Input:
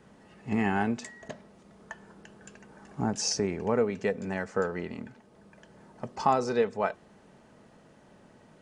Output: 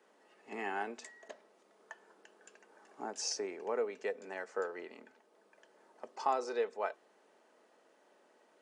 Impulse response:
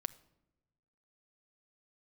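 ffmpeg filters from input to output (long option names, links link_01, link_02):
-af "highpass=frequency=340:width=0.5412,highpass=frequency=340:width=1.3066,volume=-7.5dB"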